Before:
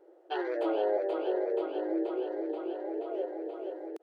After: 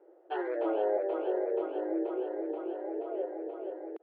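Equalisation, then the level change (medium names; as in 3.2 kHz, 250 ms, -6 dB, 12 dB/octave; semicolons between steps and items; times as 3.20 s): high-pass 240 Hz; Bessel low-pass 2 kHz, order 4; 0.0 dB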